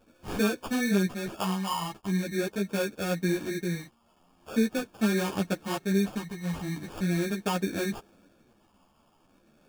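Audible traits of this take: a quantiser's noise floor 10-bit, dither none; phasing stages 6, 0.42 Hz, lowest notch 450–2600 Hz; aliases and images of a low sample rate 2000 Hz, jitter 0%; a shimmering, thickened sound

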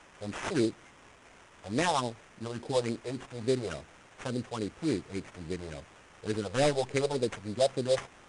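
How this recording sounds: a quantiser's noise floor 10-bit, dither triangular; phasing stages 4, 3.5 Hz, lowest notch 250–1400 Hz; aliases and images of a low sample rate 4400 Hz, jitter 20%; MP2

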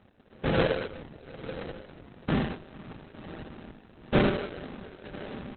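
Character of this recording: aliases and images of a low sample rate 1000 Hz, jitter 20%; random-step tremolo; Opus

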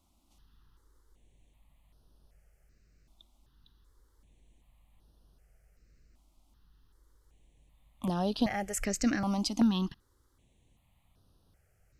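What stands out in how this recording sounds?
notches that jump at a steady rate 2.6 Hz 460–7400 Hz

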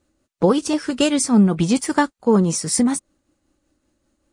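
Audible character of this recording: tremolo triangle 5.2 Hz, depth 40%

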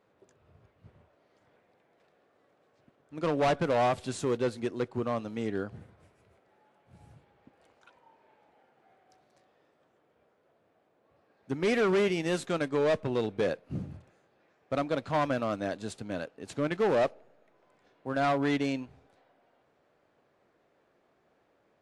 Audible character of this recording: noise floor -70 dBFS; spectral tilt -5.0 dB/oct

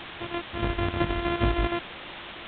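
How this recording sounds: a buzz of ramps at a fixed pitch in blocks of 128 samples; chopped level 6.4 Hz, depth 60%, duty 70%; a quantiser's noise floor 6-bit, dither triangular; G.726

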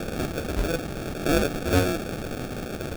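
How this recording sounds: a quantiser's noise floor 6-bit, dither triangular; phasing stages 12, 1.3 Hz, lowest notch 690–3100 Hz; aliases and images of a low sample rate 1000 Hz, jitter 0%

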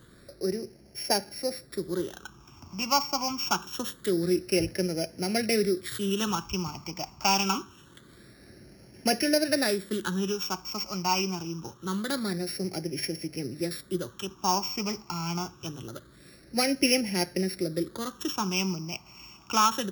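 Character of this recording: a buzz of ramps at a fixed pitch in blocks of 8 samples; phasing stages 8, 0.25 Hz, lowest notch 500–1100 Hz

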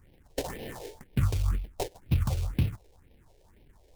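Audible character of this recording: aliases and images of a low sample rate 1300 Hz, jitter 20%; phasing stages 4, 2 Hz, lowest notch 190–1300 Hz

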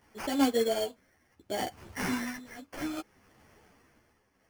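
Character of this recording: aliases and images of a low sample rate 3800 Hz, jitter 0%; tremolo triangle 0.64 Hz, depth 80%; a shimmering, thickened sound

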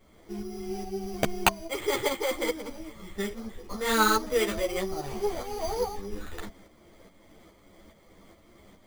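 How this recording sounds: tremolo saw up 2.4 Hz, depth 55%; aliases and images of a low sample rate 5400 Hz, jitter 0%; a shimmering, thickened sound

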